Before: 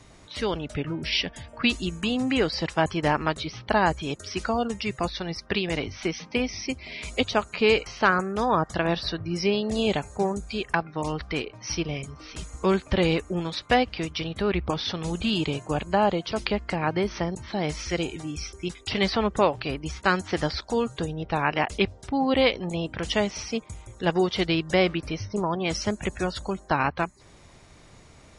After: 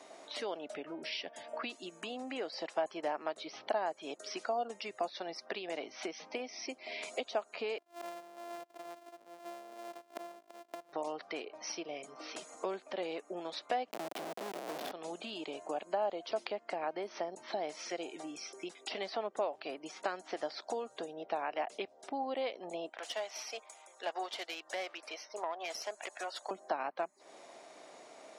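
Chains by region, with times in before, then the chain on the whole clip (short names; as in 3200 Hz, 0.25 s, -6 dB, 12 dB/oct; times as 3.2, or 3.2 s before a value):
7.78–10.93 sample sorter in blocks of 128 samples + bell 970 Hz +2 dB 1.7 oct + flipped gate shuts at -27 dBFS, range -26 dB
13.91–14.92 low shelf 310 Hz +12 dB + Schmitt trigger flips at -26.5 dBFS + three-band squash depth 40%
22.89–26.51 HPF 800 Hz + tube stage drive 23 dB, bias 0.6
whole clip: compressor 4:1, threshold -37 dBFS; HPF 280 Hz 24 dB/oct; bell 670 Hz +11.5 dB 0.64 oct; gain -3 dB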